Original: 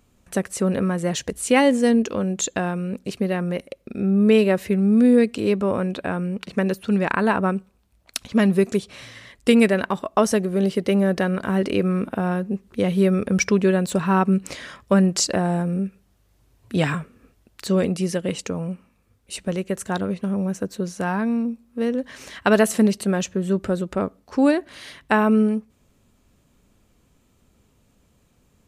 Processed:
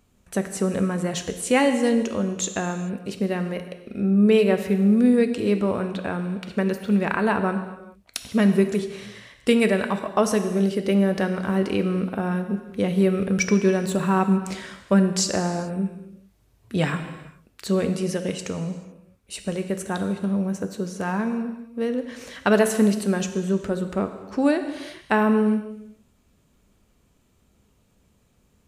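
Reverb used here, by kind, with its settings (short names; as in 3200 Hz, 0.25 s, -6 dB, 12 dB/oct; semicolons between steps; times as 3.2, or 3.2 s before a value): non-linear reverb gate 0.46 s falling, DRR 7 dB; gain -2.5 dB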